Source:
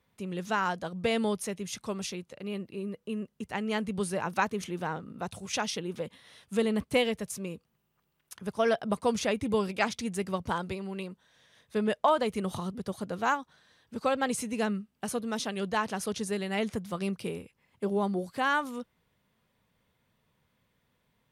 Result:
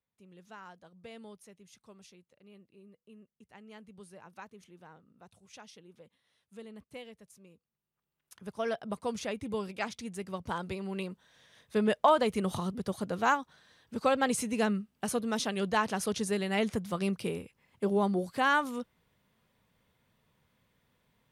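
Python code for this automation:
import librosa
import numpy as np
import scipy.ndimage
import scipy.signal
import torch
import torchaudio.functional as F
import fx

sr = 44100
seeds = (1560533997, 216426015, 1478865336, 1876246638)

y = fx.gain(x, sr, db=fx.line((7.53, -20.0), (8.41, -7.0), (10.28, -7.0), (10.96, 1.0)))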